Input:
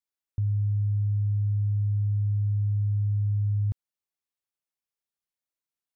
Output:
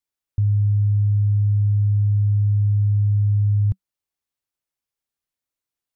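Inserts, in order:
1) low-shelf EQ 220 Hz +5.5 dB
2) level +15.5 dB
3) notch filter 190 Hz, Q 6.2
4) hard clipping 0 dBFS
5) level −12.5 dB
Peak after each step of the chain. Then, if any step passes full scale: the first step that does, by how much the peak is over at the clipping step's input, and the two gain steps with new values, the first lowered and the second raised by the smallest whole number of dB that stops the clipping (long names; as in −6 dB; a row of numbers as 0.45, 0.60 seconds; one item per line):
−17.0, −1.5, −1.5, −1.5, −14.0 dBFS
no step passes full scale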